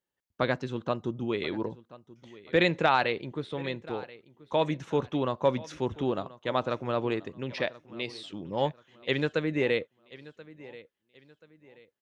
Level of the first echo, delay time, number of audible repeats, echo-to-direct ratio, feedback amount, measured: -19.5 dB, 1.032 s, 2, -19.0 dB, 34%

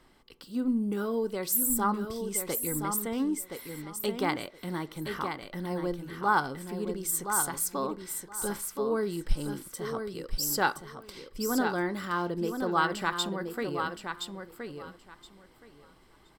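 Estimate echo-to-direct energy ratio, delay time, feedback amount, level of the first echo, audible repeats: -6.5 dB, 1.021 s, 17%, -6.5 dB, 2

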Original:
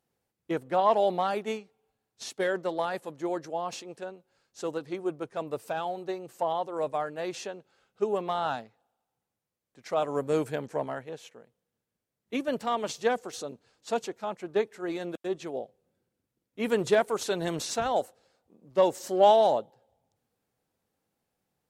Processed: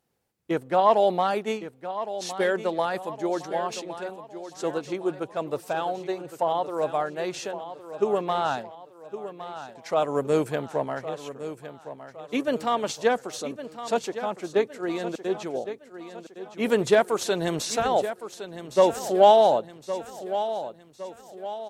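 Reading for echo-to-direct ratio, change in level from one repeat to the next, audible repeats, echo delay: -11.0 dB, -7.0 dB, 4, 1.112 s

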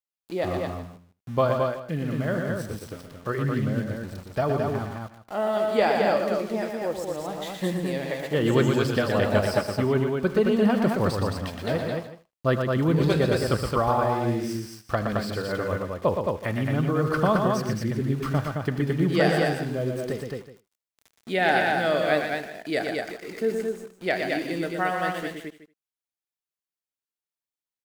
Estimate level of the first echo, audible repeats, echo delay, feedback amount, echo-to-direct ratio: -18.0 dB, 5, 79 ms, no steady repeat, -1.0 dB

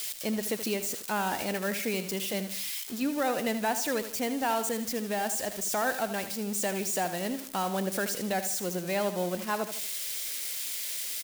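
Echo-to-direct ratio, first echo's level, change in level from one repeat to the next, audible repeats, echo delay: -10.0 dB, -11.0 dB, -7.5 dB, 3, 78 ms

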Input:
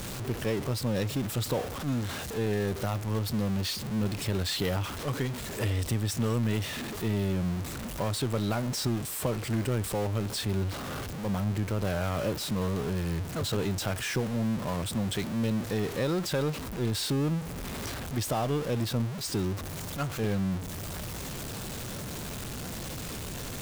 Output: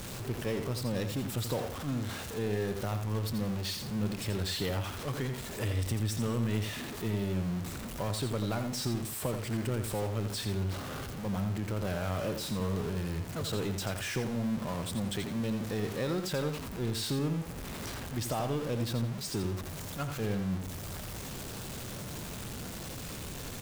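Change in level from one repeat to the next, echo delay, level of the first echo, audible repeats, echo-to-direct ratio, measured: -12.0 dB, 85 ms, -8.0 dB, 2, -7.5 dB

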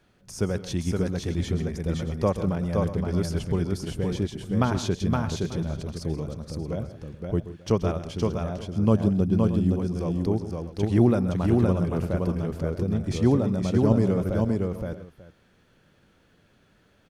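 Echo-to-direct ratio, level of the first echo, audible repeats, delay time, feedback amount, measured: -2.0 dB, -14.0 dB, 5, 0.13 s, no steady repeat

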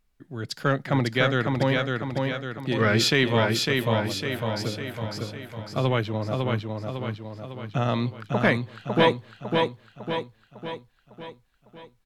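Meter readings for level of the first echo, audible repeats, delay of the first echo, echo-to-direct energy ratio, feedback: -3.5 dB, 6, 0.553 s, -2.0 dB, 52%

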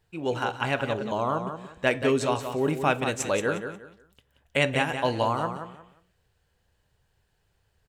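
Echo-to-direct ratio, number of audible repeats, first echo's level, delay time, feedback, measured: -8.0 dB, 3, -8.5 dB, 0.179 s, 25%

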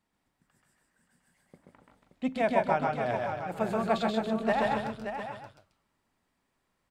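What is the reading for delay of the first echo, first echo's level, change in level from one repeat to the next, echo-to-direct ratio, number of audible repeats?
0.13 s, -3.0 dB, no steady repeat, 0.5 dB, 5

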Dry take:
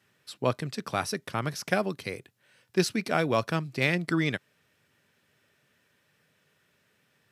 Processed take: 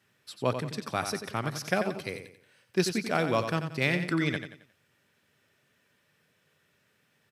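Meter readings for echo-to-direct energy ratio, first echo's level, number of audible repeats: -8.0 dB, -8.5 dB, 3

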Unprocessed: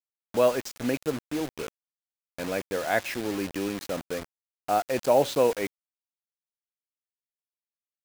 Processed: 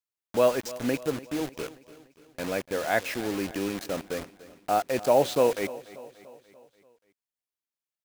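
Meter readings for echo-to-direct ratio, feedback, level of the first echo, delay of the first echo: -16.5 dB, 54%, -18.0 dB, 0.291 s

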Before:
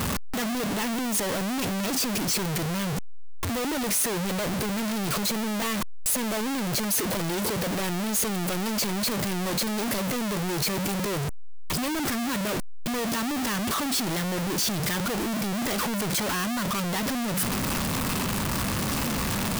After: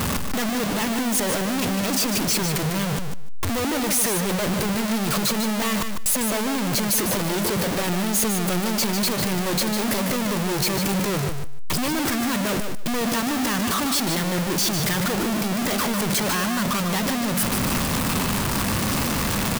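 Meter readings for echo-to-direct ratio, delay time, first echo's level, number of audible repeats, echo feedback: -7.0 dB, 0.15 s, -7.0 dB, 2, 16%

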